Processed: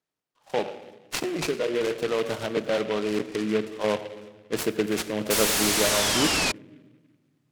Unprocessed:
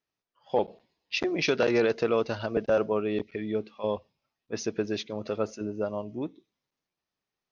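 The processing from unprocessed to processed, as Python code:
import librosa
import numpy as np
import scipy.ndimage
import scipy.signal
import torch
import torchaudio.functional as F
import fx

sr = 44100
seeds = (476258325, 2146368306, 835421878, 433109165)

p1 = fx.spec_expand(x, sr, power=1.6, at=(1.37, 1.81))
p2 = scipy.signal.sosfilt(scipy.signal.butter(4, 110.0, 'highpass', fs=sr, output='sos'), p1)
p3 = fx.level_steps(p2, sr, step_db=19)
p4 = p2 + F.gain(torch.from_numpy(p3), -2.5).numpy()
p5 = fx.room_shoebox(p4, sr, seeds[0], volume_m3=1100.0, walls='mixed', distance_m=0.49)
p6 = fx.rider(p5, sr, range_db=10, speed_s=0.5)
p7 = p6 + fx.echo_stepped(p6, sr, ms=109, hz=650.0, octaves=1.4, feedback_pct=70, wet_db=-11.5, dry=0)
p8 = fx.spec_paint(p7, sr, seeds[1], shape='fall', start_s=5.3, length_s=1.22, low_hz=2400.0, high_hz=6000.0, level_db=-24.0)
y = fx.noise_mod_delay(p8, sr, seeds[2], noise_hz=2000.0, depth_ms=0.077)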